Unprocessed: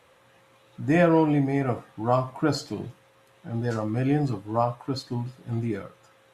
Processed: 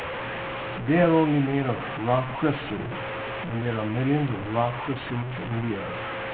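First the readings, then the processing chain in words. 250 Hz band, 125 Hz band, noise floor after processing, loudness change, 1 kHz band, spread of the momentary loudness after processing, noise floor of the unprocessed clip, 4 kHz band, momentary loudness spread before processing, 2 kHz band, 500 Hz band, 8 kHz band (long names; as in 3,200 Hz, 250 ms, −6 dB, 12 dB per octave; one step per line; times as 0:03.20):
0.0 dB, +0.5 dB, −32 dBFS, 0.0 dB, +1.5 dB, 10 LU, −59 dBFS, +3.5 dB, 15 LU, +5.0 dB, +0.5 dB, below −20 dB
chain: linear delta modulator 16 kbit/s, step −25.5 dBFS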